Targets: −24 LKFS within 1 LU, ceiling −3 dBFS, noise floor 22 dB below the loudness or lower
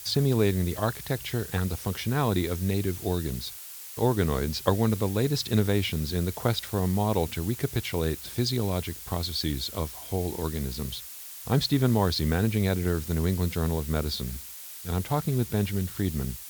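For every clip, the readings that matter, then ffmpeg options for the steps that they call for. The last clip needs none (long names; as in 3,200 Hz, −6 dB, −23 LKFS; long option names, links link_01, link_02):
background noise floor −42 dBFS; target noise floor −50 dBFS; integrated loudness −28.0 LKFS; sample peak −5.5 dBFS; target loudness −24.0 LKFS
→ -af "afftdn=noise_reduction=8:noise_floor=-42"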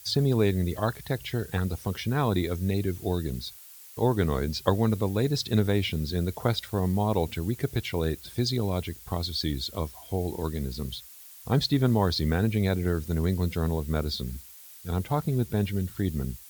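background noise floor −48 dBFS; target noise floor −50 dBFS
→ -af "afftdn=noise_reduction=6:noise_floor=-48"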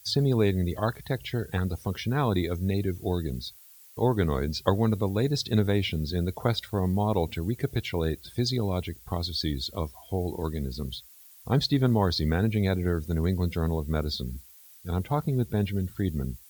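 background noise floor −52 dBFS; integrated loudness −28.0 LKFS; sample peak −5.5 dBFS; target loudness −24.0 LKFS
→ -af "volume=4dB,alimiter=limit=-3dB:level=0:latency=1"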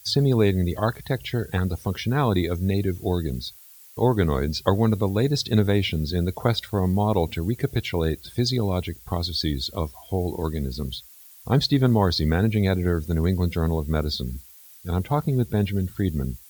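integrated loudness −24.0 LKFS; sample peak −3.0 dBFS; background noise floor −48 dBFS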